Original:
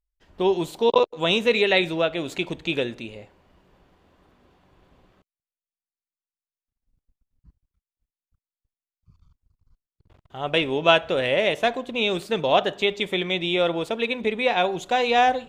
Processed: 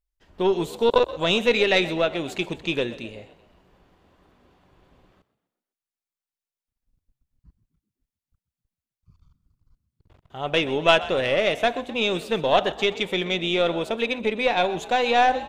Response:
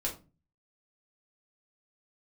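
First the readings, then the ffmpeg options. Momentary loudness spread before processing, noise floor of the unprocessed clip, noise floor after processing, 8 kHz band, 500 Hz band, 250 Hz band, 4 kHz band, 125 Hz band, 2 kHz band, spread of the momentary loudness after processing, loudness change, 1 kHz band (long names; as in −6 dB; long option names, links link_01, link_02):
8 LU, below −85 dBFS, below −85 dBFS, can't be measured, 0.0 dB, 0.0 dB, 0.0 dB, 0.0 dB, 0.0 dB, 8 LU, 0.0 dB, 0.0 dB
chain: -filter_complex "[0:a]aeval=exprs='0.708*(cos(1*acos(clip(val(0)/0.708,-1,1)))-cos(1*PI/2))+0.0562*(cos(4*acos(clip(val(0)/0.708,-1,1)))-cos(4*PI/2))':channel_layout=same,asplit=5[link_01][link_02][link_03][link_04][link_05];[link_02]adelay=127,afreqshift=51,volume=-17dB[link_06];[link_03]adelay=254,afreqshift=102,volume=-23.2dB[link_07];[link_04]adelay=381,afreqshift=153,volume=-29.4dB[link_08];[link_05]adelay=508,afreqshift=204,volume=-35.6dB[link_09];[link_01][link_06][link_07][link_08][link_09]amix=inputs=5:normalize=0"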